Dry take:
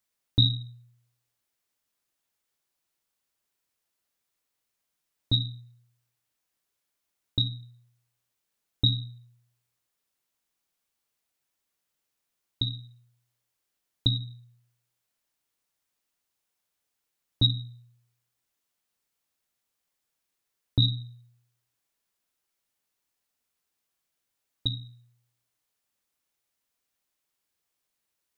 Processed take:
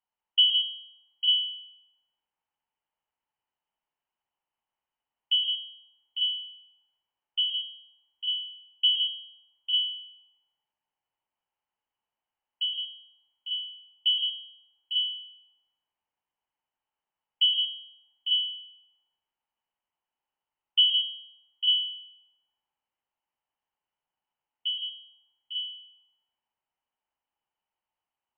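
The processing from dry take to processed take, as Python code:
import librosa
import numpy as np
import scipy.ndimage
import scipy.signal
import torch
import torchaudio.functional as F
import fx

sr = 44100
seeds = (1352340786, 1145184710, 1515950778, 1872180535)

p1 = fx.peak_eq(x, sr, hz=130.0, db=14.0, octaves=0.83)
p2 = fx.comb_fb(p1, sr, f0_hz=85.0, decay_s=0.62, harmonics='all', damping=0.0, mix_pct=40)
p3 = fx.freq_invert(p2, sr, carrier_hz=3100)
p4 = fx.peak_eq(p3, sr, hz=870.0, db=14.0, octaves=0.58)
p5 = p4 + fx.echo_multitap(p4, sr, ms=(122, 164, 235, 851, 896), db=(-6.5, -8.0, -12.5, -9.0, -6.0), dry=0)
y = p5 * librosa.db_to_amplitude(-6.0)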